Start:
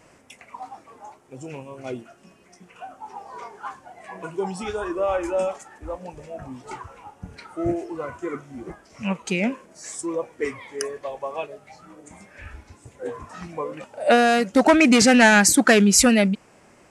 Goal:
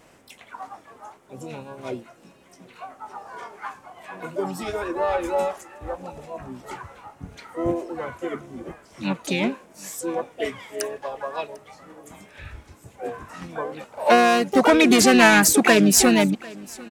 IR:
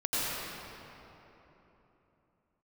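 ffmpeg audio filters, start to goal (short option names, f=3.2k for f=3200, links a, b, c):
-filter_complex "[0:a]aecho=1:1:748|1496:0.0708|0.0156,asplit=3[a][b][c];[b]asetrate=33038,aresample=44100,atempo=1.33484,volume=-18dB[d];[c]asetrate=66075,aresample=44100,atempo=0.66742,volume=-6dB[e];[a][d][e]amix=inputs=3:normalize=0,volume=-1dB"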